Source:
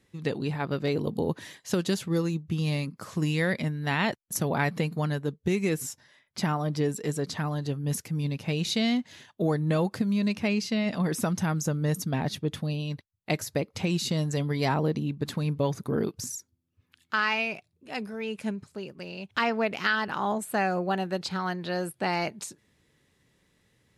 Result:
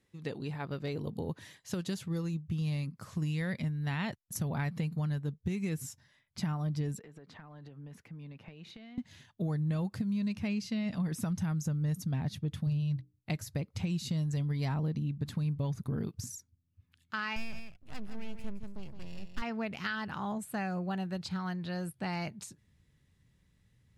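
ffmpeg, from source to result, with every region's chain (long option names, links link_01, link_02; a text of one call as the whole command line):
ffmpeg -i in.wav -filter_complex "[0:a]asettb=1/sr,asplit=3[link_01][link_02][link_03];[link_01]atrim=end=6.994[link_04];[link_02]atrim=start=6.99:end=8.98,asetpts=PTS-STARTPTS,afade=type=in:duration=0.004:curve=qsin,afade=type=out:start_time=1.986:duration=0.004:curve=qsin,acrossover=split=270 2900:gain=0.141 1 0.0891[link_05][link_06][link_07];[link_05][link_06][link_07]amix=inputs=3:normalize=0,acompressor=threshold=-39dB:ratio=16:attack=3.2:release=140:knee=1:detection=peak[link_08];[link_03]atrim=start=8.976[link_09];[link_04][link_08]acrossfade=duration=0.004:curve1=hsin:curve2=qsin[link_10];[link_10][link_09]acrossfade=duration=0.004:curve1=qsin:curve2=hsin,asettb=1/sr,asplit=3[link_11][link_12][link_13];[link_11]atrim=end=12.664[link_14];[link_12]atrim=start=12.66:end=13.3,asetpts=PTS-STARTPTS,afade=type=in:duration=0.004:curve=qsin,afade=type=out:start_time=0.636:duration=0.004:curve=qsin,equalizer=frequency=130:width_type=o:width=0.31:gain=13,bandreject=frequency=60:width_type=h:width=6,bandreject=frequency=120:width_type=h:width=6,bandreject=frequency=180:width_type=h:width=6,bandreject=frequency=240:width_type=h:width=6,bandreject=frequency=300:width_type=h:width=6,bandreject=frequency=360:width_type=h:width=6,bandreject=frequency=420:width_type=h:width=6,bandreject=frequency=480:width_type=h:width=6,asoftclip=type=hard:threshold=-21dB[link_15];[link_13]atrim=start=13.296[link_16];[link_14][link_15]acrossfade=duration=0.004:curve1=hsin:curve2=qsin[link_17];[link_17][link_16]acrossfade=duration=0.004:curve1=qsin:curve2=hsin,asettb=1/sr,asplit=3[link_18][link_19][link_20];[link_18]atrim=end=17.364[link_21];[link_19]atrim=start=17.36:end=19.42,asetpts=PTS-STARTPTS,afade=type=in:duration=0.004:curve=qsin,afade=type=out:start_time=2.056:duration=0.004:curve=qsin,aeval=exprs='max(val(0),0)':channel_layout=same,aecho=1:1:165:0.376,atrim=end_sample=90846[link_22];[link_20]atrim=start=19.416[link_23];[link_21][link_22]acrossfade=duration=0.004:curve1=hsin:curve2=qsin[link_24];[link_24][link_23]acrossfade=duration=0.004:curve1=qsin:curve2=hsin,asubboost=boost=5.5:cutoff=160,acompressor=threshold=-23dB:ratio=2.5,volume=-8dB" out.wav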